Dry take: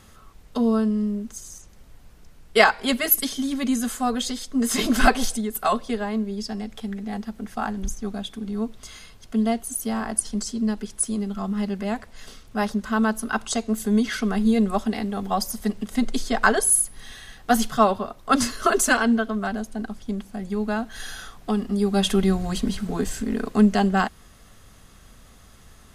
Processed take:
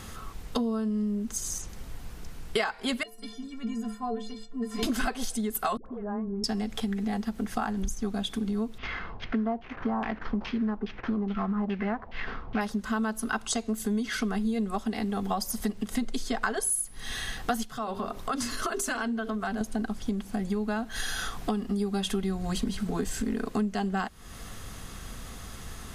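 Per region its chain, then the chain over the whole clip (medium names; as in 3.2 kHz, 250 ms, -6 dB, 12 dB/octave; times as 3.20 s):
3.03–4.83 s: low-pass 1.4 kHz 6 dB/octave + inharmonic resonator 210 Hz, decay 0.34 s, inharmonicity 0.03
5.77–6.44 s: low-pass 1.3 kHz 24 dB/octave + compression 16:1, threshold -36 dBFS + phase dispersion highs, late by 88 ms, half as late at 500 Hz
8.78–12.61 s: CVSD coder 32 kbps + LFO low-pass saw down 2.4 Hz 790–2900 Hz
17.63–19.61 s: hum notches 50/100/150/200/250/300/350/400/450/500 Hz + compression 2.5:1, threshold -37 dBFS
whole clip: band-stop 590 Hz, Q 12; compression 6:1, threshold -36 dBFS; trim +8.5 dB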